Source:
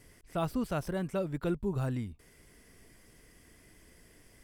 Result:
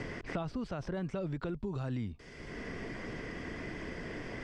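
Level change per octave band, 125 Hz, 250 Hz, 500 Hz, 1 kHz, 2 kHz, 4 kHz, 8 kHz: −2.5, −2.5, −3.5, −3.5, +5.5, +1.0, −5.5 decibels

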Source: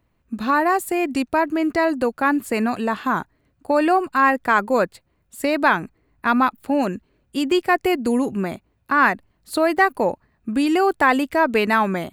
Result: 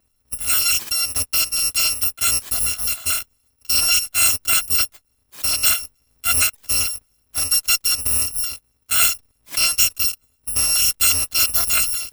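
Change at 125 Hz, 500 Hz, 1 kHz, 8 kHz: −1.5, −22.0, −15.0, +23.5 decibels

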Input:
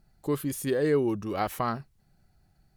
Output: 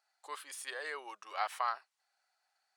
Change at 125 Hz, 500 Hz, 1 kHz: below −40 dB, −20.0 dB, −4.0 dB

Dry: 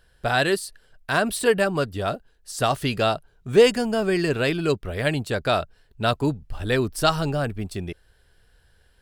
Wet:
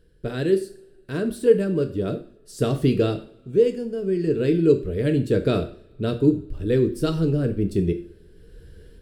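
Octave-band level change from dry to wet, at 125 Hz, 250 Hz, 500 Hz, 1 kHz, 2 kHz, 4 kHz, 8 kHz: +3.5 dB, +4.5 dB, +1.0 dB, −13.5 dB, −12.0 dB, −10.0 dB, below −10 dB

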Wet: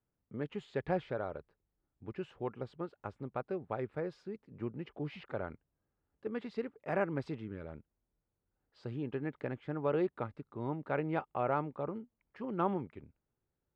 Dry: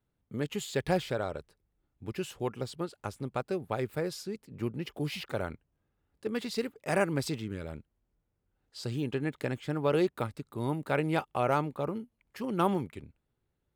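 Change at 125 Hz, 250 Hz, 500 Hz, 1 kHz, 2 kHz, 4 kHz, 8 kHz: −6.5 dB, −5.5 dB, −4.5 dB, −4.5 dB, −7.0 dB, −16.0 dB, below −25 dB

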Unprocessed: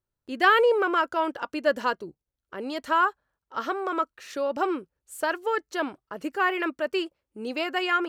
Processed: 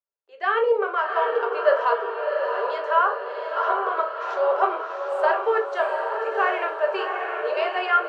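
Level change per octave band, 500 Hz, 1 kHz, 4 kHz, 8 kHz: +5.0 dB, +4.0 dB, −3.5 dB, below −10 dB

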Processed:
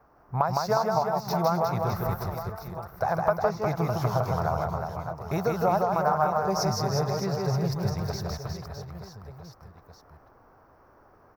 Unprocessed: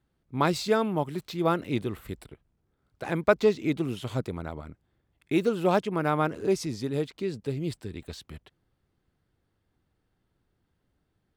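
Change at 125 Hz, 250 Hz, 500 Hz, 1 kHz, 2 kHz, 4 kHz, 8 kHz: +5.5, −2.5, +0.5, +6.5, −1.5, +1.0, +4.5 decibels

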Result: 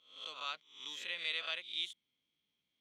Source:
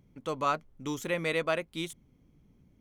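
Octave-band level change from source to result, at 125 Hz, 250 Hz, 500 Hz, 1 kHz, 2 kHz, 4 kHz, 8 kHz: below −30 dB, −29.0 dB, −23.0 dB, −15.5 dB, −6.0 dB, +4.0 dB, −10.5 dB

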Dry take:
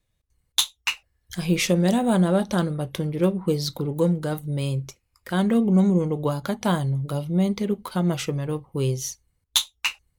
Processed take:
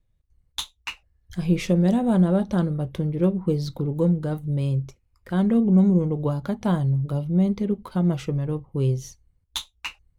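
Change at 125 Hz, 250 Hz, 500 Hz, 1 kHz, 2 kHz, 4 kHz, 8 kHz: +2.0 dB, +1.5 dB, −2.0 dB, −4.0 dB, −7.0 dB, −9.0 dB, below −10 dB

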